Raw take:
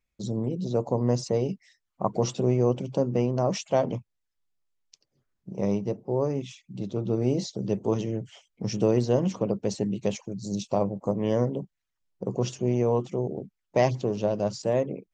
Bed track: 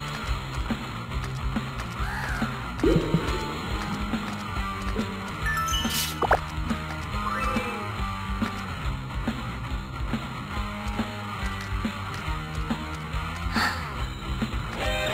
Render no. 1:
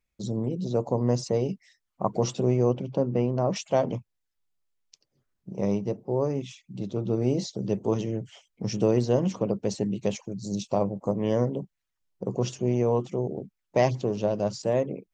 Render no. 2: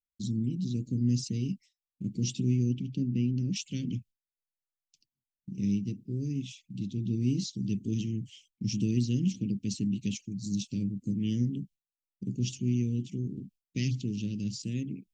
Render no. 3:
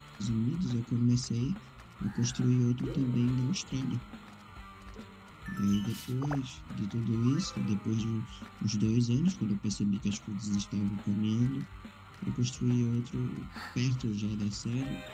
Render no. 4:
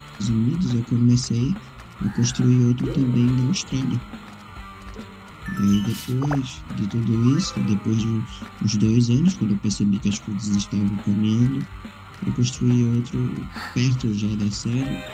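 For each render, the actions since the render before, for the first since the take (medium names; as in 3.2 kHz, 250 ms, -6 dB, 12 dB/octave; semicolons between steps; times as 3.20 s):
2.72–3.56 s: distance through air 150 m
gate with hold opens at -43 dBFS; elliptic band-stop 270–2700 Hz, stop band 70 dB
add bed track -18.5 dB
trim +10 dB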